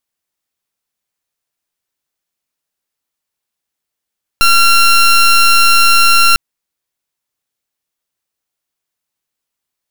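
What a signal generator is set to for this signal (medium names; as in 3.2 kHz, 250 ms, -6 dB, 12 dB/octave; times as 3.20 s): pulse 1.37 kHz, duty 18% -7.5 dBFS 1.95 s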